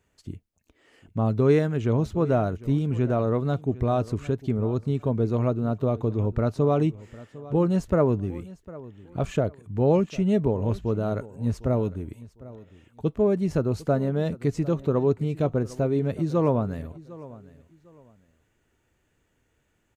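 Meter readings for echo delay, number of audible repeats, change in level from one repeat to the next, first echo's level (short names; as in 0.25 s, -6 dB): 0.753 s, 2, -11.5 dB, -19.0 dB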